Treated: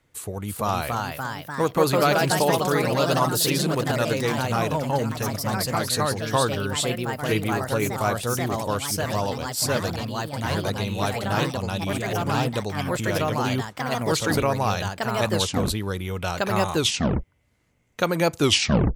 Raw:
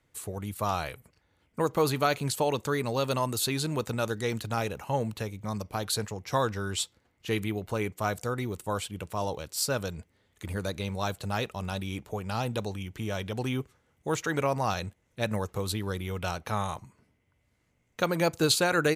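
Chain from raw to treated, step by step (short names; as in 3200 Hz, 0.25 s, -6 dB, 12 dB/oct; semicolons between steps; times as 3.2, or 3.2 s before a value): tape stop at the end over 0.57 s; echoes that change speed 0.351 s, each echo +2 st, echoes 3; gain +4.5 dB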